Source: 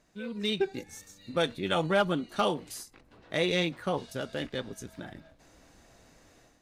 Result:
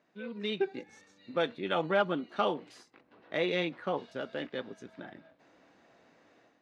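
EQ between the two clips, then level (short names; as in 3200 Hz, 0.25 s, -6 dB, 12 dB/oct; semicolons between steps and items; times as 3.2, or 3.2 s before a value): BPF 220–3000 Hz; -1.5 dB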